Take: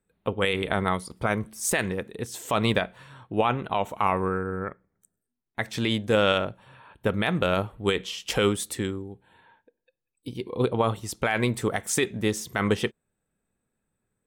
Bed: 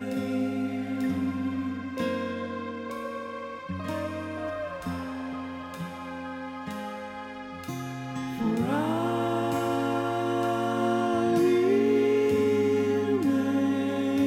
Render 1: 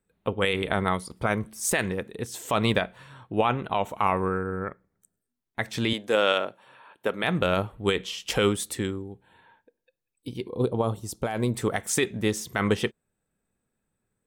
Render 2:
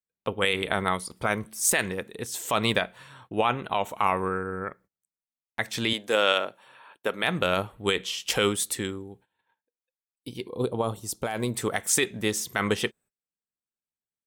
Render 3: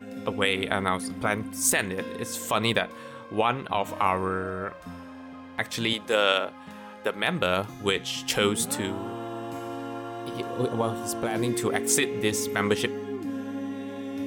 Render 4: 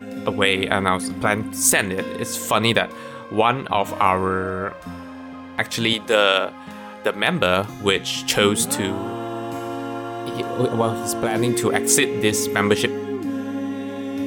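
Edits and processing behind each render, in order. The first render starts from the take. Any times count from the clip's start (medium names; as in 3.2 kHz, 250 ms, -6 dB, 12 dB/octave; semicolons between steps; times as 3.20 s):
5.93–7.24 s: high-pass 330 Hz; 10.48–11.55 s: peaking EQ 2.1 kHz -13 dB 1.7 oct
tilt EQ +1.5 dB/octave; gate -53 dBFS, range -23 dB
add bed -8 dB
trim +6.5 dB; peak limiter -2 dBFS, peak gain reduction 2 dB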